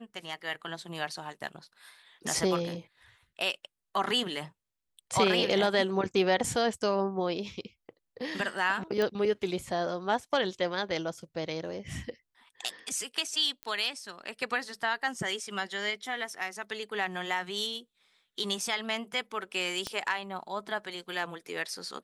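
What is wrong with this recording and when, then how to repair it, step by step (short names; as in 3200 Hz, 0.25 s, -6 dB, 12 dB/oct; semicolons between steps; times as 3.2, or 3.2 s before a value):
9.02 pop -16 dBFS
13.63 pop -23 dBFS
19.87 pop -19 dBFS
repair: de-click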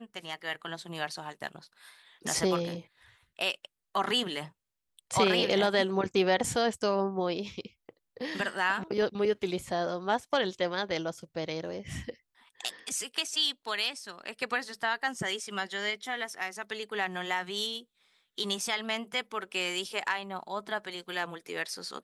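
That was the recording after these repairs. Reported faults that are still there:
19.87 pop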